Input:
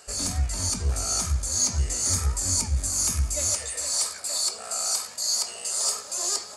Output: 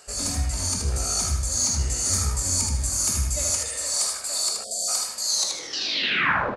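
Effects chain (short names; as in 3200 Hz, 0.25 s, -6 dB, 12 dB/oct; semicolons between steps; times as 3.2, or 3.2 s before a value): tape stop at the end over 1.30 s; feedback echo 78 ms, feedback 32%, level -4 dB; two-slope reverb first 0.59 s, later 2.3 s, from -18 dB, DRR 12.5 dB; spectral delete 4.64–4.88, 720–3100 Hz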